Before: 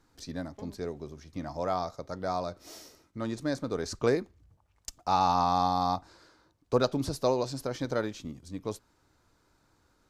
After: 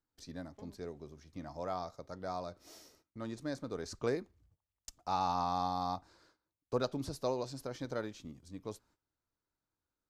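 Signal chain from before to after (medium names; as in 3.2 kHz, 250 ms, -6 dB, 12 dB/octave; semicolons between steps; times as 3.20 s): gate -59 dBFS, range -16 dB; trim -8 dB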